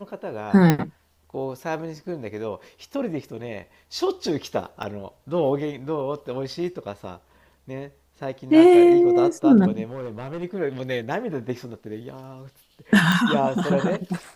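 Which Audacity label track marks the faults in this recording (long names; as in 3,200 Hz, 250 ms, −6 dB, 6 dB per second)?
0.700000	0.700000	click −4 dBFS
4.830000	4.830000	drop-out 2.7 ms
9.910000	10.440000	clipping −28 dBFS
13.120000	13.120000	click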